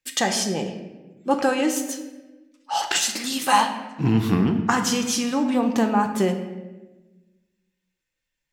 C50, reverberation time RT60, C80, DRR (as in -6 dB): 8.5 dB, 1.2 s, 10.0 dB, 5.0 dB